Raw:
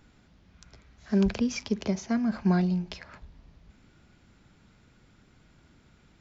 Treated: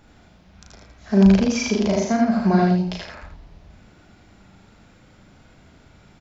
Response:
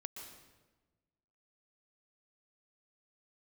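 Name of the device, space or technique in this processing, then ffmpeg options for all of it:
slapback doubling: -filter_complex "[0:a]asplit=3[a][b][c];[b]adelay=36,volume=-4dB[d];[c]adelay=88,volume=-5dB[e];[a][d][e]amix=inputs=3:normalize=0,equalizer=f=690:t=o:w=0.77:g=6,asettb=1/sr,asplit=3[f][g][h];[f]atrim=end=1.514[i];[g]atrim=start=1.51:end=2.05,asetpts=PTS-STARTPTS,afade=t=in:d=0.004:c=qsin,afade=t=out:st=0.536:d=0.004:c=qsin,asplit=2[j][k];[k]adelay=39,volume=-3dB[l];[j][l]amix=inputs=2:normalize=0,atrim=end_sample=23814[m];[h]atrim=start=2.046[n];[i][m]acrossfade=d=0.004:c1=hsin:c2=qsin[o];[o][n]acrossfade=d=0.004:c1=qsin:c2=hsin,aecho=1:1:78:0.596,volume=4.5dB"

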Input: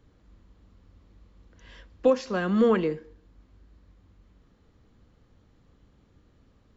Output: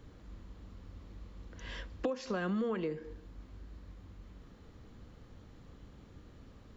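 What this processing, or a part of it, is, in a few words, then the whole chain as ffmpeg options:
serial compression, peaks first: -af "acompressor=threshold=-34dB:ratio=4,acompressor=threshold=-41dB:ratio=2,volume=6dB"

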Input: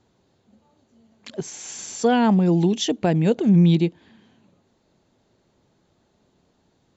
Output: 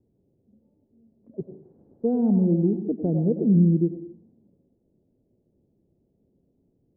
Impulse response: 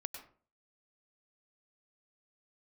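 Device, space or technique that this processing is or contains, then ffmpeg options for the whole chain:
next room: -filter_complex "[0:a]lowpass=f=480:w=0.5412,lowpass=f=480:w=1.3066[a];[1:a]atrim=start_sample=2205[b];[a][b]afir=irnorm=-1:irlink=0"

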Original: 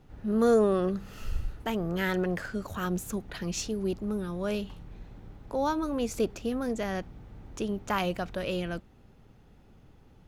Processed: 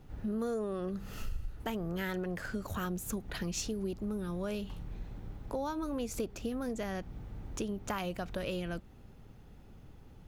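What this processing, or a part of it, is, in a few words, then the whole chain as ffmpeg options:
ASMR close-microphone chain: -af "lowshelf=f=140:g=4,acompressor=threshold=-33dB:ratio=5,highshelf=f=9.7k:g=6.5"

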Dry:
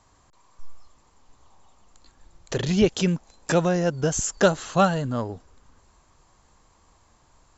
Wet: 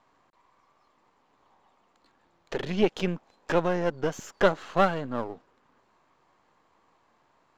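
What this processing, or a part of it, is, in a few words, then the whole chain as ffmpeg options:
crystal radio: -af "highpass=230,lowpass=2.9k,aeval=exprs='if(lt(val(0),0),0.447*val(0),val(0))':c=same"

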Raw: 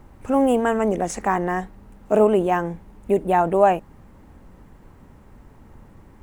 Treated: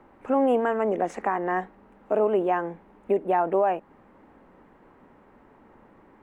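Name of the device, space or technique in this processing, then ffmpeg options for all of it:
DJ mixer with the lows and highs turned down: -filter_complex "[0:a]acrossover=split=230 2900:gain=0.112 1 0.126[a][b][c];[a][b][c]amix=inputs=3:normalize=0,alimiter=limit=-13.5dB:level=0:latency=1:release=284"

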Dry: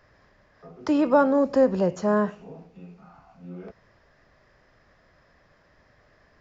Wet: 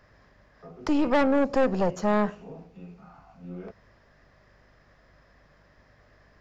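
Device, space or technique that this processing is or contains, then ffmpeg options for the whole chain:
valve amplifier with mains hum: -af "aeval=exprs='(tanh(11.2*val(0)+0.6)-tanh(0.6))/11.2':c=same,aeval=exprs='val(0)+0.000501*(sin(2*PI*50*n/s)+sin(2*PI*2*50*n/s)/2+sin(2*PI*3*50*n/s)/3+sin(2*PI*4*50*n/s)/4+sin(2*PI*5*50*n/s)/5)':c=same,volume=3dB"

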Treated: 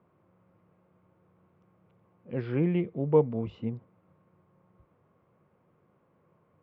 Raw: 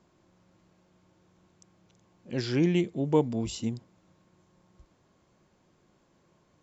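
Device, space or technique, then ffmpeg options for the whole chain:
bass cabinet: -af "highpass=79,equalizer=f=98:t=q:w=4:g=6,equalizer=f=150:t=q:w=4:g=4,equalizer=f=320:t=q:w=4:g=-3,equalizer=f=480:t=q:w=4:g=7,equalizer=f=1.2k:t=q:w=4:g=5,equalizer=f=1.7k:t=q:w=4:g=-4,lowpass=f=2.3k:w=0.5412,lowpass=f=2.3k:w=1.3066,volume=-2.5dB"

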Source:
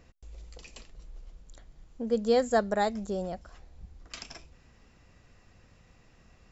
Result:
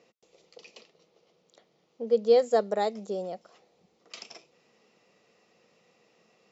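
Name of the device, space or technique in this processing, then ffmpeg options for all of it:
television speaker: -filter_complex "[0:a]asettb=1/sr,asplit=3[a][b][c];[a]atrim=end=0.454[d];[b]atrim=start=0.45:end=2.39,asetpts=PTS-STARTPTS,afade=t=in:d=0.004:c=qsin,afade=t=out:st=1.936:d=0.004:c=qsin,lowpass=f=6.3k:w=0.5412,lowpass=f=6.3k:w=1.3066[e];[c]atrim=start=2.386[f];[d][e]acrossfade=d=0.004:c1=hsin:c2=qsin[g];[g][f]acrossfade=d=0.004:c1=qsin:c2=hsin,highpass=f=210:w=0.5412,highpass=f=210:w=1.3066,equalizer=f=270:t=q:w=4:g=-10,equalizer=f=460:t=q:w=4:g=6,equalizer=f=1k:t=q:w=4:g=-3,equalizer=f=1.6k:t=q:w=4:g=-10,lowpass=f=6.7k:w=0.5412,lowpass=f=6.7k:w=1.3066"

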